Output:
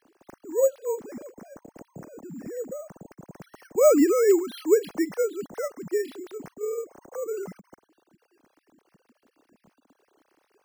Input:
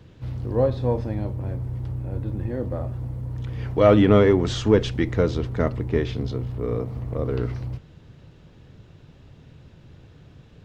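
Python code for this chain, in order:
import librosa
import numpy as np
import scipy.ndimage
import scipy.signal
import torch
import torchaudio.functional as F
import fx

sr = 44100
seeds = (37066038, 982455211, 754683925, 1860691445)

y = fx.sine_speech(x, sr)
y = np.repeat(y[::6], 6)[:len(y)]
y = y * 10.0 ** (-4.0 / 20.0)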